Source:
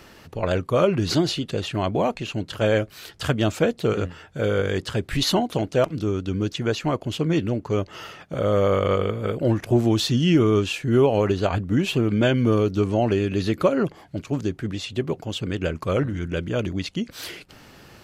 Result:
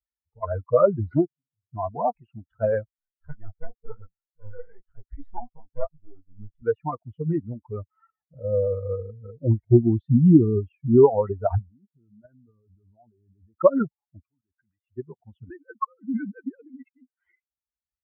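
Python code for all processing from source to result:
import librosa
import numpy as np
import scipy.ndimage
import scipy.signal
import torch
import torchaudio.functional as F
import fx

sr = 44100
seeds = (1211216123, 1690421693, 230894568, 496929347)

y = fx.chain(x, sr, fx.tone_stack(knobs='6-0-2'),
    fx.room_flutter(wall_m=9.3, rt60_s=0.72), at=(1.25, 1.73))
y = fx.chain(y, sr, fx.halfwave_gain(db=-12.0),
    fx.detune_double(cents=35), at=(2.97, 6.62))
y = fx.chain(y, sr, fx.law_mismatch(coded='mu'),
    fx.peak_eq(hz=1600.0, db=-9.0, octaves=1.6), at=(8.1, 10.98))
y = fx.chain(y, sr, fx.lowpass(hz=1800.0, slope=24),
    fx.level_steps(step_db=17),
    fx.low_shelf(hz=420.0, db=2.0), at=(11.69, 13.58))
y = fx.chain(y, sr, fx.tilt_shelf(db=-6.0, hz=1100.0),
    fx.level_steps(step_db=19), at=(14.29, 14.87))
y = fx.chain(y, sr, fx.sine_speech(),
    fx.transient(attack_db=8, sustain_db=-7),
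    fx.over_compress(threshold_db=-29.0, ratio=-1.0), at=(15.5, 17.17))
y = fx.bin_expand(y, sr, power=3.0)
y = scipy.signal.sosfilt(scipy.signal.butter(6, 1300.0, 'lowpass', fs=sr, output='sos'), y)
y = F.gain(torch.from_numpy(y), 7.5).numpy()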